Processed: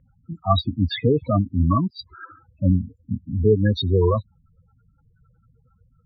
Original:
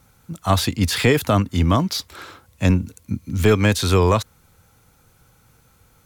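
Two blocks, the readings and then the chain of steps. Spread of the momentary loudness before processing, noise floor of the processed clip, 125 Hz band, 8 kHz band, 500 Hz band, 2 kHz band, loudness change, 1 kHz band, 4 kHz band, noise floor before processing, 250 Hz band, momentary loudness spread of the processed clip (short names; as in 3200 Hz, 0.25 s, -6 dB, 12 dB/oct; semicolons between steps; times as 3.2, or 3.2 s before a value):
13 LU, -62 dBFS, -1.5 dB, under -35 dB, -1.5 dB, -13.0 dB, -2.0 dB, -3.5 dB, -5.5 dB, -57 dBFS, -2.0 dB, 12 LU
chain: loudest bins only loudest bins 8; LFO low-pass sine 5.6 Hz 900–4100 Hz; gain -1 dB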